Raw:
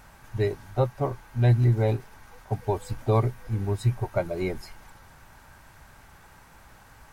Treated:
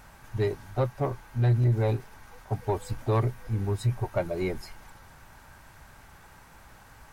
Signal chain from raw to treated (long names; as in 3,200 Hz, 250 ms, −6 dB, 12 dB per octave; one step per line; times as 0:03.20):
soft clipping −17 dBFS, distortion −15 dB